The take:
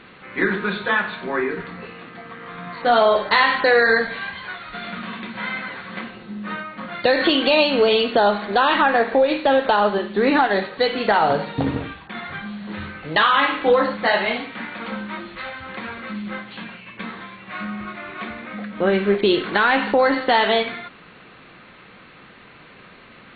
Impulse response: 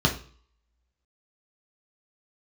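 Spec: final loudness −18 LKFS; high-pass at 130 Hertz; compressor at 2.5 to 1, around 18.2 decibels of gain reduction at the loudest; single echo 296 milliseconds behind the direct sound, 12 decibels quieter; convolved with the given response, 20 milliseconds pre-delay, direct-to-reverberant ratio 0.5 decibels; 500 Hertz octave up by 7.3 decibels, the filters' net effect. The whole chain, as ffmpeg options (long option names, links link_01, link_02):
-filter_complex "[0:a]highpass=130,equalizer=frequency=500:width_type=o:gain=8.5,acompressor=threshold=-34dB:ratio=2.5,aecho=1:1:296:0.251,asplit=2[link_01][link_02];[1:a]atrim=start_sample=2205,adelay=20[link_03];[link_02][link_03]afir=irnorm=-1:irlink=0,volume=-14.5dB[link_04];[link_01][link_04]amix=inputs=2:normalize=0,volume=9.5dB"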